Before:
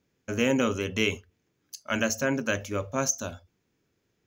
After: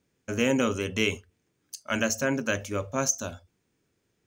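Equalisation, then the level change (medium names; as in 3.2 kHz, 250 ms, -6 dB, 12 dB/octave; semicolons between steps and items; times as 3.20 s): peaking EQ 8.6 kHz +14 dB 0.21 oct; 0.0 dB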